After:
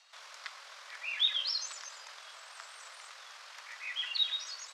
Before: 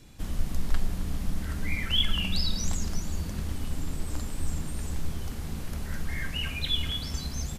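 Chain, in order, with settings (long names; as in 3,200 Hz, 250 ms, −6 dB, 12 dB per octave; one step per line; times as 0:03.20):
tempo change 1.6×
Chebyshev band-pass filter 790–4,900 Hz, order 2
frequency shifter +370 Hz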